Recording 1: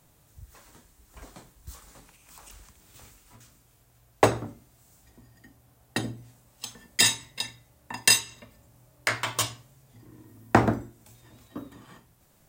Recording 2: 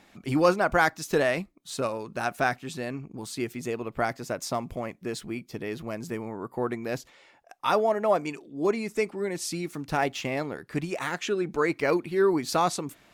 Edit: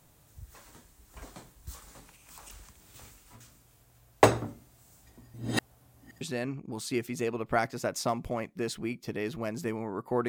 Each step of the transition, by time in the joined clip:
recording 1
0:05.34–0:06.21: reverse
0:06.21: continue with recording 2 from 0:02.67

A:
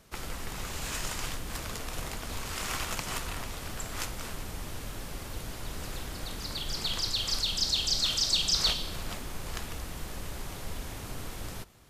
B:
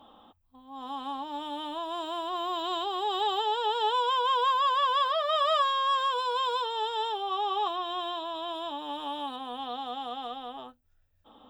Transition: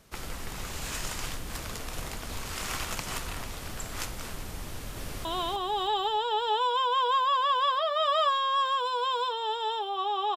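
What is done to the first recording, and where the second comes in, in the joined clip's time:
A
0:04.65–0:05.25: delay throw 310 ms, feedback 40%, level −3 dB
0:05.25: continue with B from 0:02.58

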